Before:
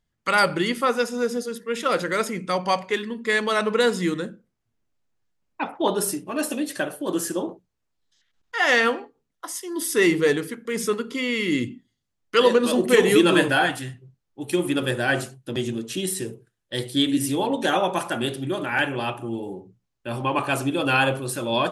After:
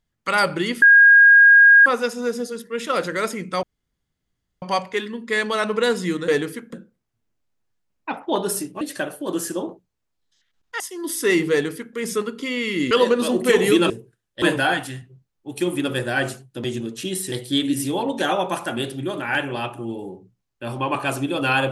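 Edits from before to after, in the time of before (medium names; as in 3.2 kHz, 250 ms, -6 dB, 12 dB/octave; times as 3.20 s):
0.82 s: add tone 1.63 kHz -7 dBFS 1.04 s
2.59 s: insert room tone 0.99 s
6.33–6.61 s: delete
8.60–9.52 s: delete
10.23–10.68 s: copy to 4.25 s
11.63–12.35 s: delete
16.24–16.76 s: move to 13.34 s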